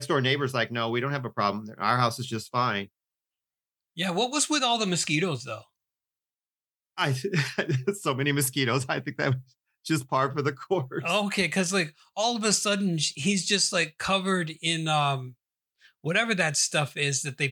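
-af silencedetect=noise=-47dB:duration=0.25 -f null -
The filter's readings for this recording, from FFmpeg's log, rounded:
silence_start: 2.86
silence_end: 3.97 | silence_duration: 1.11
silence_start: 5.63
silence_end: 6.97 | silence_duration: 1.34
silence_start: 9.42
silence_end: 9.85 | silence_duration: 0.43
silence_start: 15.32
silence_end: 15.84 | silence_duration: 0.52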